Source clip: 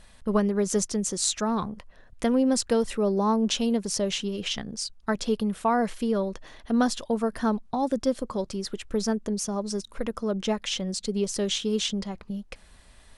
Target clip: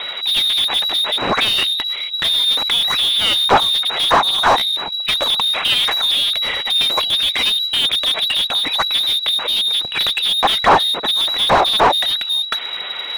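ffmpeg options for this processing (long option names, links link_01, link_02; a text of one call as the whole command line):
ffmpeg -i in.wav -filter_complex "[0:a]lowpass=frequency=3300:width_type=q:width=0.5098,lowpass=frequency=3300:width_type=q:width=0.6013,lowpass=frequency=3300:width_type=q:width=0.9,lowpass=frequency=3300:width_type=q:width=2.563,afreqshift=-3900,asplit=2[link_01][link_02];[link_02]highpass=frequency=720:poles=1,volume=35dB,asoftclip=type=tanh:threshold=-9dB[link_03];[link_01][link_03]amix=inputs=2:normalize=0,lowpass=frequency=1200:poles=1,volume=-6dB,aphaser=in_gain=1:out_gain=1:delay=4.7:decay=0.26:speed=1.4:type=sinusoidal,volume=7.5dB" out.wav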